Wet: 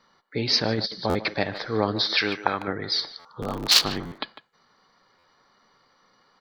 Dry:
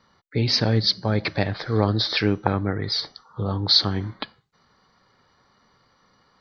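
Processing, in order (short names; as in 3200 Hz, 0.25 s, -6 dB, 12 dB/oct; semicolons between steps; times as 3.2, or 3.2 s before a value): 3.41–4.19 cycle switcher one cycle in 3, inverted; bell 72 Hz -14 dB 2.2 oct; speakerphone echo 0.15 s, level -13 dB; 0.62–1.15 negative-ratio compressor -25 dBFS, ratio -0.5; 2.18–2.68 tilt shelf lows -7 dB, about 790 Hz; stuck buffer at 1.09/3.19/4.06/5.18, samples 512, times 4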